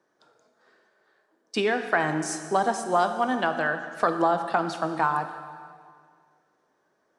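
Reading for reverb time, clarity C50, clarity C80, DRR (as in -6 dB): 2.0 s, 8.5 dB, 9.5 dB, 7.5 dB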